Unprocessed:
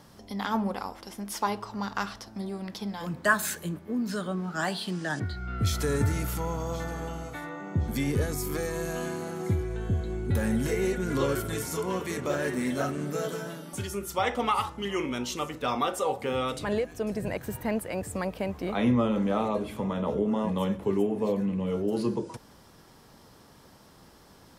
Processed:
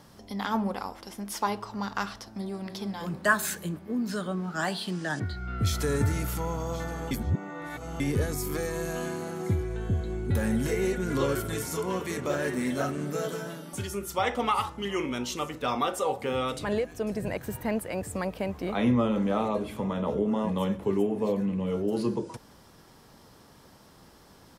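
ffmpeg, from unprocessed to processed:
ffmpeg -i in.wav -filter_complex "[0:a]asplit=2[link_01][link_02];[link_02]afade=type=in:start_time=2.24:duration=0.01,afade=type=out:start_time=2.67:duration=0.01,aecho=0:1:300|600|900|1200|1500|1800|2100|2400|2700|3000|3300:0.375837|0.263086|0.18416|0.128912|0.0902386|0.063167|0.0442169|0.0309518|0.0216663|0.0151664|0.0106165[link_03];[link_01][link_03]amix=inputs=2:normalize=0,asplit=3[link_04][link_05][link_06];[link_04]atrim=end=7.112[link_07];[link_05]atrim=start=7.108:end=8.002,asetpts=PTS-STARTPTS,areverse[link_08];[link_06]atrim=start=7.998[link_09];[link_07][link_08]acrossfade=duration=0.004:curve1=hsin:curve2=hsin[link_10];[link_10][link_09]acrossfade=duration=0.004:curve1=hsin:curve2=hsin" out.wav

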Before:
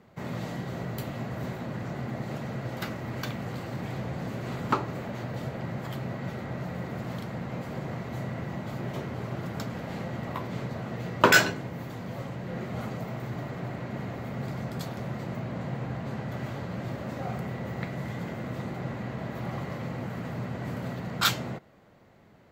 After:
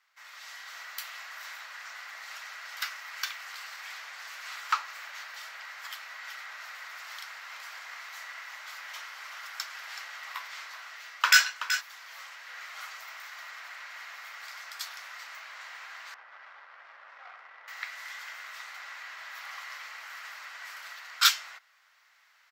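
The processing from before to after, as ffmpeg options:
ffmpeg -i in.wav -filter_complex "[0:a]asplit=3[link_01][link_02][link_03];[link_01]afade=type=out:start_time=6.24:duration=0.02[link_04];[link_02]aecho=1:1:377:0.299,afade=type=in:start_time=6.24:duration=0.02,afade=type=out:start_time=11.8:duration=0.02[link_05];[link_03]afade=type=in:start_time=11.8:duration=0.02[link_06];[link_04][link_05][link_06]amix=inputs=3:normalize=0,asettb=1/sr,asplit=3[link_07][link_08][link_09];[link_07]atrim=end=16.144[link_10];[link_08]atrim=start=16.14:end=17.68,asetpts=PTS-STARTPTS,afade=type=in:duration=0.004:curve=qsin,afade=type=out:start_time=1.536:duration=0.004:curve=qsin,adynamicsmooth=sensitivity=1.5:basefreq=1000[link_11];[link_09]atrim=start=17.676[link_12];[link_10][link_11]acrossfade=duration=0.004:curve1=hsin:curve2=qsin[link_13];[link_13][link_12]acrossfade=duration=0.004:curve1=qsin:curve2=hsin,highpass=frequency=1300:width=0.5412,highpass=frequency=1300:width=1.3066,equalizer=frequency=5400:width=3.7:gain=7,dynaudnorm=framelen=220:gausssize=5:maxgain=8dB,volume=-3.5dB" out.wav

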